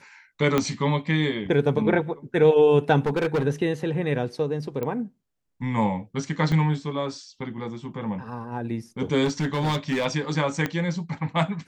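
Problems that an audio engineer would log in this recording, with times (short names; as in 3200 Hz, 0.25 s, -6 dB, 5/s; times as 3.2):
0.58 pop -8 dBFS
3.06–3.46 clipped -19.5 dBFS
4.83 pop -17 dBFS
6.52 gap 2.5 ms
9.24–10.06 clipped -20 dBFS
10.66 pop -12 dBFS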